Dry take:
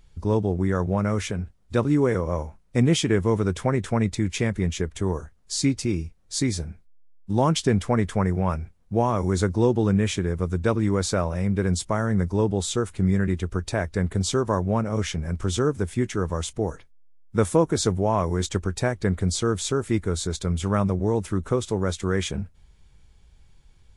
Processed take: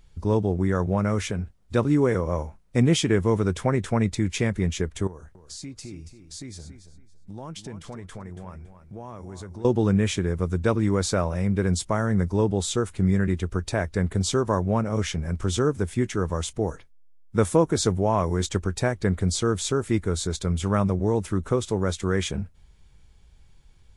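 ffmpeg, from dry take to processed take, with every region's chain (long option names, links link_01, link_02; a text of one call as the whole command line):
ffmpeg -i in.wav -filter_complex "[0:a]asettb=1/sr,asplit=3[link_01][link_02][link_03];[link_01]atrim=end=5.074[link_04];[link_02]atrim=start=5.07:end=9.65,asetpts=PTS-STARTPTS,afade=type=in:duration=0.004:curve=qsin,afade=type=out:start_time=4.576:duration=0.004:curve=qsin,acompressor=threshold=-40dB:ratio=3:attack=3.2:release=140:knee=1:detection=peak,aecho=1:1:280|560|840:0.282|0.0676|0.0162,atrim=end_sample=201978[link_05];[link_03]atrim=start=9.646[link_06];[link_04][link_05]acrossfade=duration=0.004:curve1=hsin:curve2=qsin[link_07];[link_07][link_06]acrossfade=duration=0.004:curve1=qsin:curve2=hsin" out.wav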